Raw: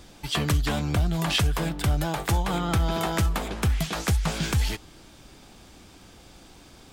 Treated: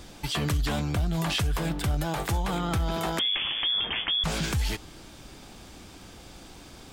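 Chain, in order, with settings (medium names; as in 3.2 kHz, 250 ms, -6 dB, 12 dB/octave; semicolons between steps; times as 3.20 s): 3.19–4.24 s: frequency inversion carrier 3.4 kHz; peak limiter -23 dBFS, peak gain reduction 10.5 dB; trim +3 dB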